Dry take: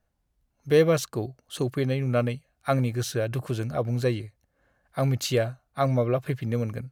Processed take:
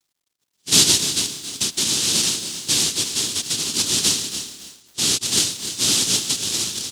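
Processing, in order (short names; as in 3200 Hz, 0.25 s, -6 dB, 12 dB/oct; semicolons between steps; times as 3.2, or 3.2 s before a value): rotary speaker horn 0.7 Hz; in parallel at +2 dB: limiter -20 dBFS, peak gain reduction 10 dB; on the sum: noise vocoder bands 1; band shelf 1100 Hz -15 dB 2.5 oct; requantised 12-bit, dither none; on a send: feedback echo 0.3 s, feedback 22%, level -12 dB; on the sum: lo-fi delay 0.271 s, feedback 35%, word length 6-bit, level -12.5 dB; gain +2 dB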